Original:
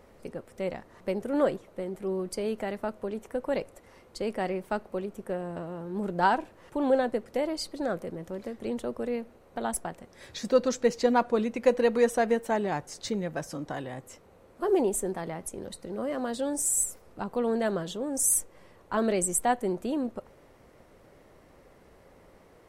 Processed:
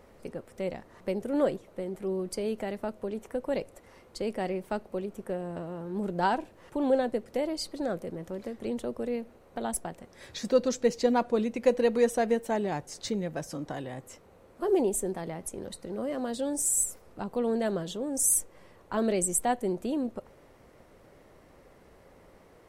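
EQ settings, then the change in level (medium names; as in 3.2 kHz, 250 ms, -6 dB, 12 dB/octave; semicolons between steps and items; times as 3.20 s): dynamic bell 1.3 kHz, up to -5 dB, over -43 dBFS, Q 0.93; 0.0 dB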